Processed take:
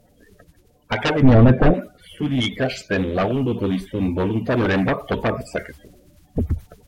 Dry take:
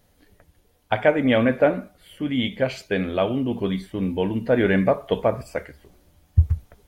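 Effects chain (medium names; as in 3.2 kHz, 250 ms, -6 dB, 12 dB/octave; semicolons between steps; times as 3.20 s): coarse spectral quantiser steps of 30 dB; sine folder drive 11 dB, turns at -5.5 dBFS; 1.22–1.74 s: tilt EQ -4 dB/octave; trim -9.5 dB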